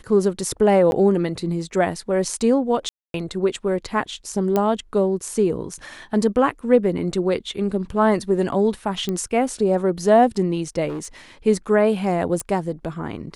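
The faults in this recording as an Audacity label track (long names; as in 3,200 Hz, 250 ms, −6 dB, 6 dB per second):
0.910000	0.920000	drop-out 11 ms
2.890000	3.140000	drop-out 252 ms
4.560000	4.560000	click −8 dBFS
9.090000	9.090000	click −12 dBFS
10.880000	11.060000	clipping −25.5 dBFS
12.400000	12.400000	click −13 dBFS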